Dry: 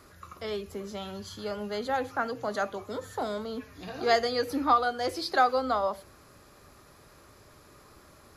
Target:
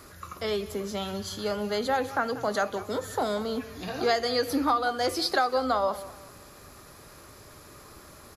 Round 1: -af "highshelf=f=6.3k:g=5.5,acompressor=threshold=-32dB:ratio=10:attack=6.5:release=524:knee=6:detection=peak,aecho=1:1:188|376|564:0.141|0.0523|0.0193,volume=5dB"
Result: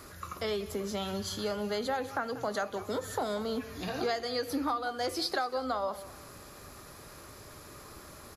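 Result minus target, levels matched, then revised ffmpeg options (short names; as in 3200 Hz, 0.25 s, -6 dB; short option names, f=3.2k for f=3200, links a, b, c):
compressor: peak gain reduction +7.5 dB
-af "highshelf=f=6.3k:g=5.5,acompressor=threshold=-23.5dB:ratio=10:attack=6.5:release=524:knee=6:detection=peak,aecho=1:1:188|376|564:0.141|0.0523|0.0193,volume=5dB"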